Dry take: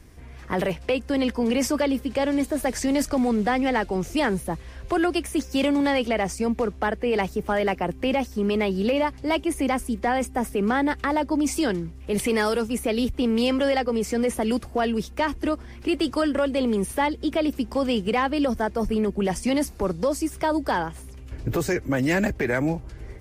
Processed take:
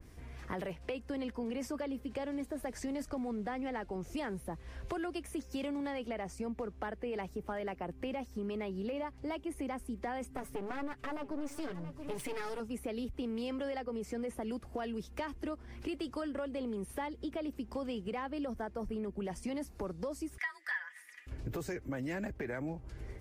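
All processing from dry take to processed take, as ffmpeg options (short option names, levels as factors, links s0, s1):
-filter_complex "[0:a]asettb=1/sr,asplit=3[s0][s1][s2];[s0]atrim=end=10.304[s3];[s1]atrim=start=10.3:end=12.6,asetpts=PTS-STARTPTS,afade=t=in:d=0.004:c=qsin,afade=t=out:st=2.296:d=0.004:c=qsin,aecho=1:1:7:0.83,atrim=end_sample=101430,aeval=exprs='clip(val(0),-1,0.0237)':c=same,aecho=1:1:677:0.15,atrim=end_sample=101430[s4];[s2]atrim=start=12.596[s5];[s3][s4]acrossfade=d=0.004:c1=hsin:c2=qsin[s6];[s6][s5]acrossfade=d=0.004:c1=qsin:c2=hsin,asettb=1/sr,asplit=3[s7][s8][s9];[s7]atrim=end=20.384[s10];[s8]atrim=start=20.38:end=21.27,asetpts=PTS-STARTPTS,afade=t=in:d=0.004:c=qsin,afade=t=out:st=0.886:d=0.004:c=qsin,highpass=f=1800:t=q:w=16,aecho=1:1:4.2:0.83,atrim=end_sample=39249,afreqshift=49[s11];[s9]atrim=start=21.266[s12];[s10][s11]acrossfade=d=0.004:c1=hsin:c2=qsin[s13];[s13][s12]acrossfade=d=0.004:c1=qsin:c2=hsin,acompressor=threshold=0.0224:ratio=3,adynamicequalizer=threshold=0.00282:dfrequency=2200:dqfactor=0.7:tfrequency=2200:tqfactor=0.7:attack=5:release=100:ratio=0.375:range=3:mode=cutabove:tftype=highshelf,volume=0.531"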